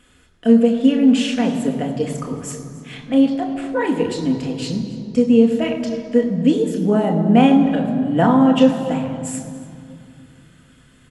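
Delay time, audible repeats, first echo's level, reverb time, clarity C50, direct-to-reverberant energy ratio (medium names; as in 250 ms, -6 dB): 284 ms, 1, -18.0 dB, 2.5 s, 7.0 dB, 2.0 dB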